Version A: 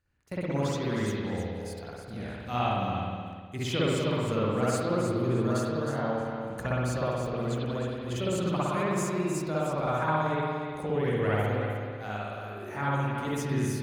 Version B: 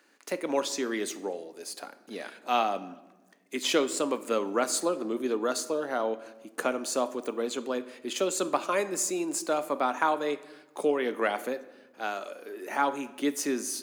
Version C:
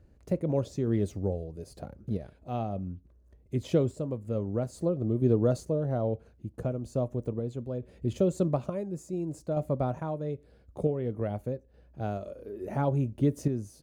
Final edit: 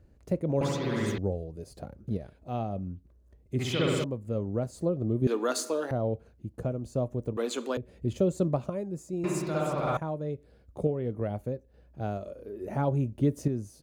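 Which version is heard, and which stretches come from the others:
C
0.61–1.18 from A
3.59–4.04 from A
5.27–5.91 from B
7.37–7.77 from B
9.24–9.97 from A

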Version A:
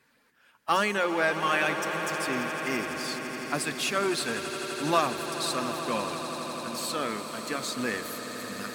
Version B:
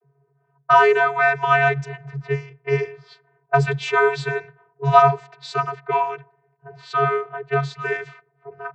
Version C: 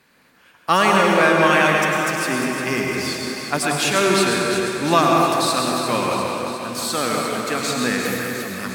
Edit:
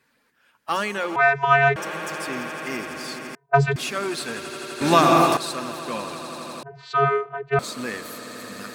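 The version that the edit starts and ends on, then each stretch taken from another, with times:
A
1.16–1.76 from B
3.35–3.76 from B
4.81–5.37 from C
6.63–7.59 from B

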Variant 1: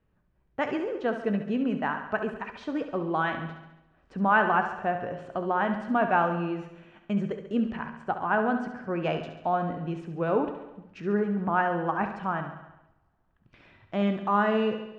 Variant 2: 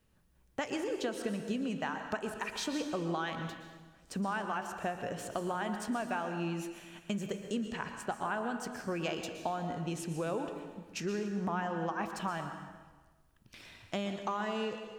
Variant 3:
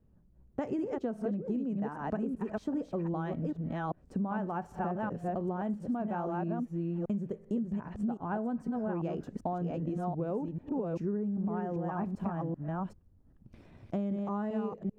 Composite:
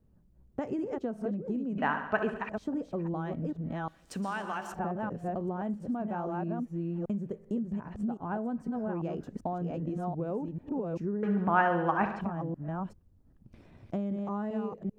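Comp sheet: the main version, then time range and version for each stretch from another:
3
1.78–2.49 from 1
3.88–4.74 from 2
11.23–12.21 from 1

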